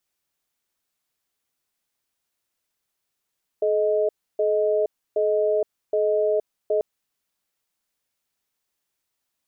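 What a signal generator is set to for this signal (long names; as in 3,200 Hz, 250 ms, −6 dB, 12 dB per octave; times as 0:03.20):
tone pair in a cadence 428 Hz, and 625 Hz, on 0.47 s, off 0.30 s, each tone −21 dBFS 3.19 s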